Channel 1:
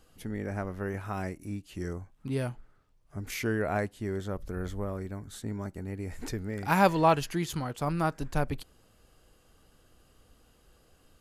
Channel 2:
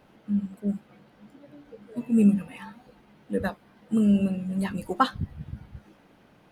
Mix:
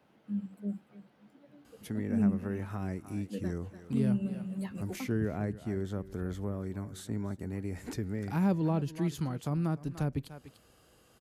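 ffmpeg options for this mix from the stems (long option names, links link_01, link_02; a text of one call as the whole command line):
ffmpeg -i stem1.wav -i stem2.wav -filter_complex "[0:a]adelay=1650,volume=1.5dB,asplit=2[link_01][link_02];[link_02]volume=-18dB[link_03];[1:a]acrossover=split=490[link_04][link_05];[link_05]acompressor=threshold=-33dB:ratio=6[link_06];[link_04][link_06]amix=inputs=2:normalize=0,volume=-8.5dB,asplit=2[link_07][link_08];[link_08]volume=-16dB[link_09];[link_03][link_09]amix=inputs=2:normalize=0,aecho=0:1:294:1[link_10];[link_01][link_07][link_10]amix=inputs=3:normalize=0,acrossover=split=350[link_11][link_12];[link_12]acompressor=threshold=-45dB:ratio=3[link_13];[link_11][link_13]amix=inputs=2:normalize=0,highpass=84" out.wav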